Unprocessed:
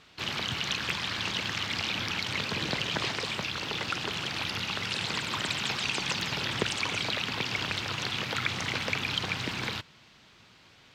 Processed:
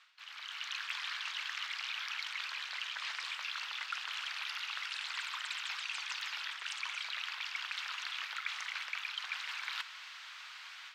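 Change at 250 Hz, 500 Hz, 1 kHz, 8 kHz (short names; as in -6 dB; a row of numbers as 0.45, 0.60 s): under -40 dB, under -30 dB, -9.0 dB, -10.0 dB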